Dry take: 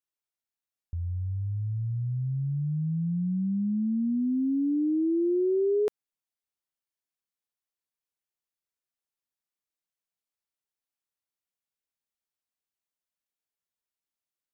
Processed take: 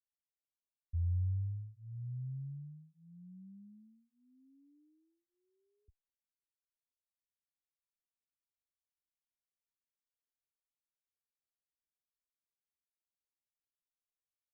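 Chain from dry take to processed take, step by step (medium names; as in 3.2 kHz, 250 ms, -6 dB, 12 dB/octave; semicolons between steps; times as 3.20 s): inverse Chebyshev low-pass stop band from 550 Hz, stop band 80 dB; barber-pole phaser -0.68 Hz; trim +1.5 dB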